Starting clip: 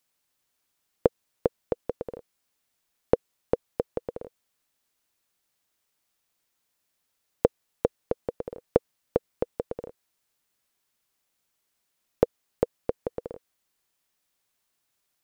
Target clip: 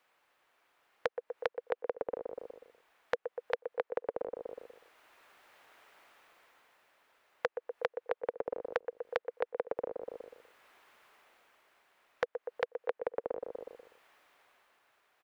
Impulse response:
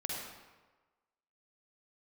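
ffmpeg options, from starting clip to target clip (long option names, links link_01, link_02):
-filter_complex "[0:a]dynaudnorm=framelen=130:gausssize=17:maxgain=11.5dB,apsyclip=17.5dB,acrossover=split=400 2600:gain=0.126 1 0.0794[link_01][link_02][link_03];[link_01][link_02][link_03]amix=inputs=3:normalize=0,asplit=2[link_04][link_05];[link_05]adelay=122,lowpass=frequency=1600:poles=1,volume=-9dB,asplit=2[link_06][link_07];[link_07]adelay=122,lowpass=frequency=1600:poles=1,volume=0.43,asplit=2[link_08][link_09];[link_09]adelay=122,lowpass=frequency=1600:poles=1,volume=0.43,asplit=2[link_10][link_11];[link_11]adelay=122,lowpass=frequency=1600:poles=1,volume=0.43,asplit=2[link_12][link_13];[link_13]adelay=122,lowpass=frequency=1600:poles=1,volume=0.43[link_14];[link_06][link_08][link_10][link_12][link_14]amix=inputs=5:normalize=0[link_15];[link_04][link_15]amix=inputs=2:normalize=0,acompressor=threshold=-30dB:ratio=5,volume=-3dB"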